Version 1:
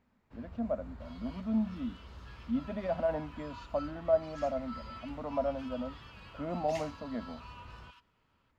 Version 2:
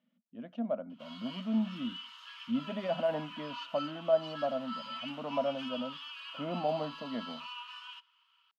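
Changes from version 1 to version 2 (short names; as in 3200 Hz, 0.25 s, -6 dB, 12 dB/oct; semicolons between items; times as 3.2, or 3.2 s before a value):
first sound: muted; second sound +4.0 dB; master: add bell 3000 Hz +13.5 dB 0.3 oct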